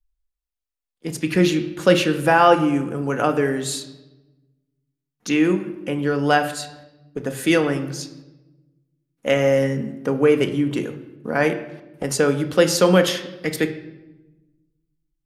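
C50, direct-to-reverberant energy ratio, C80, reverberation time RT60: 12.0 dB, 6.0 dB, 14.0 dB, 1.1 s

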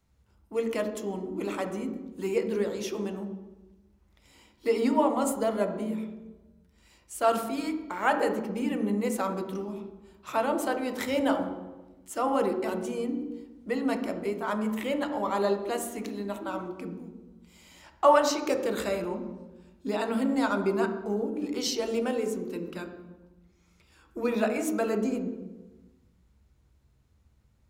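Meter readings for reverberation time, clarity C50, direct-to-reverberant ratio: 1.2 s, 7.5 dB, 4.5 dB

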